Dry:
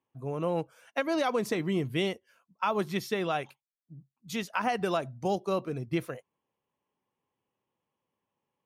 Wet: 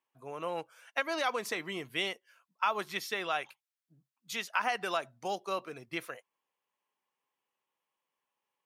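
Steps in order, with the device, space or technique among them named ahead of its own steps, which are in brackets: filter by subtraction (in parallel: LPF 1600 Hz 12 dB/oct + phase invert)

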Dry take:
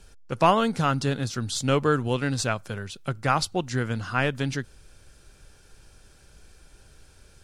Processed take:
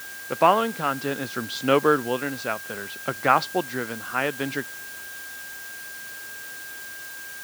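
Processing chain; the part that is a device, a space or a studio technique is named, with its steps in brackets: shortwave radio (BPF 250–3000 Hz; tremolo 0.62 Hz, depth 48%; whine 1600 Hz -43 dBFS; white noise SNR 15 dB); low shelf 140 Hz -4.5 dB; gain +5.5 dB

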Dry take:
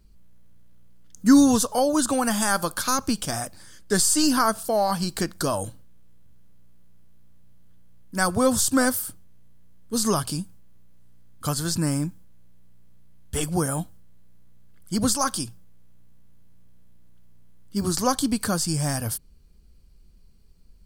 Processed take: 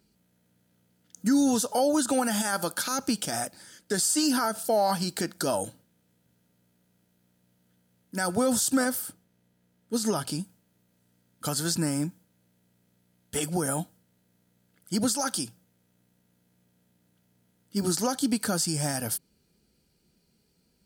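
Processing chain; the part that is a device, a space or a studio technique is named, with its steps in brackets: PA system with an anti-feedback notch (HPF 180 Hz 12 dB/oct; Butterworth band-stop 1100 Hz, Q 5.6; limiter -16 dBFS, peak gain reduction 9.5 dB); 8.85–10.4 high shelf 4600 Hz -5 dB

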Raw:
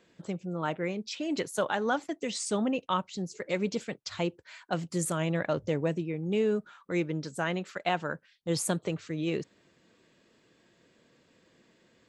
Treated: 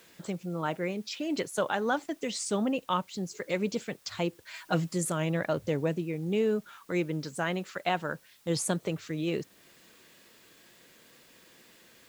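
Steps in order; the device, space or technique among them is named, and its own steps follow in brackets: noise-reduction cassette on a plain deck (mismatched tape noise reduction encoder only; wow and flutter 29 cents; white noise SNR 30 dB); 4.53–4.93 comb 6.3 ms, depth 93%

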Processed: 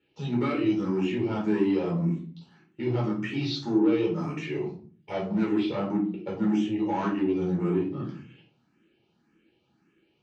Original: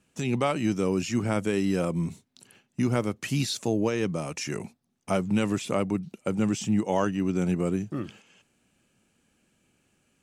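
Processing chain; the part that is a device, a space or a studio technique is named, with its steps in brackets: barber-pole phaser into a guitar amplifier (endless phaser +1.8 Hz; soft clip -25 dBFS, distortion -13 dB; speaker cabinet 82–4500 Hz, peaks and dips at 100 Hz -9 dB, 340 Hz +9 dB, 600 Hz -4 dB); shoebox room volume 330 m³, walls furnished, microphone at 4.4 m; gain -5 dB

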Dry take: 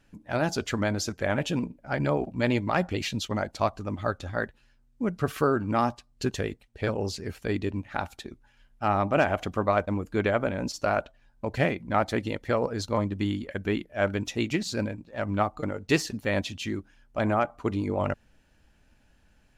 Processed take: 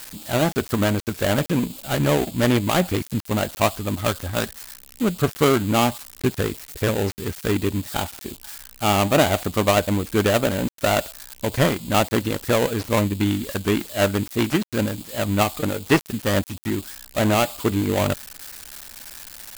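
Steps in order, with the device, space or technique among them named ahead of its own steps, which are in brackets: budget class-D amplifier (switching dead time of 0.26 ms; switching spikes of -25.5 dBFS); gain +7 dB

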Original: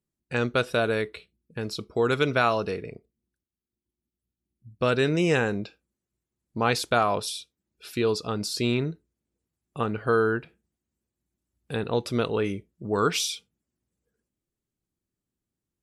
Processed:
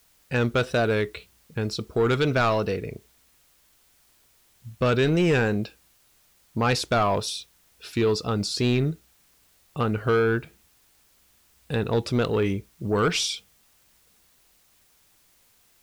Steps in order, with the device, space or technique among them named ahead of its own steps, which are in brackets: compact cassette (soft clip -18 dBFS, distortion -15 dB; LPF 8400 Hz; wow and flutter; white noise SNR 34 dB); low shelf 83 Hz +11.5 dB; gain +3 dB

